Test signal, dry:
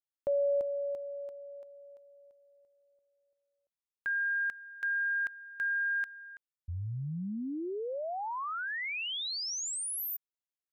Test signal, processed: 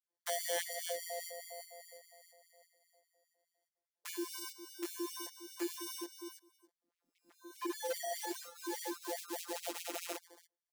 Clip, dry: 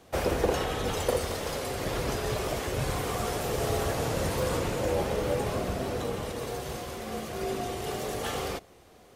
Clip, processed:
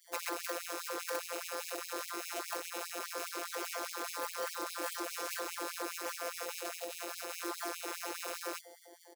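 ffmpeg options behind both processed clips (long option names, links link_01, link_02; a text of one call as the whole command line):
ffmpeg -i in.wav -filter_complex "[0:a]acrossover=split=220|470[link_01][link_02][link_03];[link_01]acompressor=threshold=-48dB:ratio=4[link_04];[link_02]acompressor=threshold=-34dB:ratio=4[link_05];[link_03]acompressor=threshold=-39dB:ratio=4[link_06];[link_04][link_05][link_06]amix=inputs=3:normalize=0,acrossover=split=440[link_07][link_08];[link_08]acrusher=samples=34:mix=1:aa=0.000001[link_09];[link_07][link_09]amix=inputs=2:normalize=0,flanger=delay=16:depth=5.8:speed=0.31,equalizer=frequency=2600:width_type=o:width=0.75:gain=-13.5,afftfilt=real='hypot(re,im)*cos(PI*b)':imag='0':win_size=1024:overlap=0.75,asplit=2[link_10][link_11];[link_11]aecho=0:1:283:0.106[link_12];[link_10][link_12]amix=inputs=2:normalize=0,aeval=exprs='0.0106*(abs(mod(val(0)/0.0106+3,4)-2)-1)':channel_layout=same,highshelf=frequency=2000:gain=8,afftfilt=real='re*gte(b*sr/1024,220*pow(2200/220,0.5+0.5*sin(2*PI*4.9*pts/sr)))':imag='im*gte(b*sr/1024,220*pow(2200/220,0.5+0.5*sin(2*PI*4.9*pts/sr)))':win_size=1024:overlap=0.75,volume=8.5dB" out.wav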